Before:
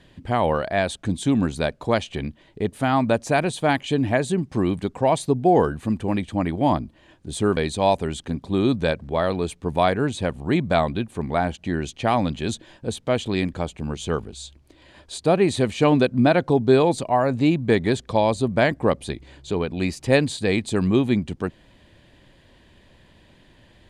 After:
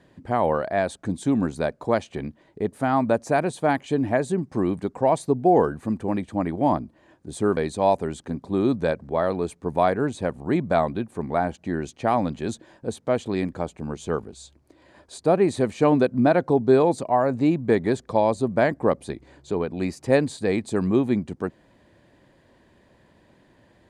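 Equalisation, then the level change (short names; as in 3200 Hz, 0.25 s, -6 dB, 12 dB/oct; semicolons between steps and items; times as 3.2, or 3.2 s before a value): HPF 340 Hz 6 dB/oct; tilt -1.5 dB/oct; bell 3100 Hz -9 dB 0.97 oct; 0.0 dB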